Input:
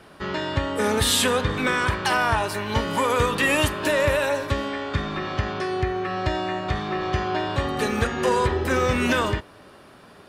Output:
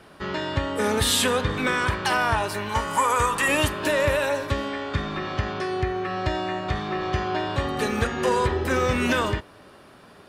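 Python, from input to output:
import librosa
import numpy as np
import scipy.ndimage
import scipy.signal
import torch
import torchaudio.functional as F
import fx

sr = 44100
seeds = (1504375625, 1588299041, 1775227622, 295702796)

y = fx.graphic_eq(x, sr, hz=(125, 250, 500, 1000, 4000, 8000), db=(-5, -6, -4, 6, -7, 9), at=(2.69, 3.48))
y = y * librosa.db_to_amplitude(-1.0)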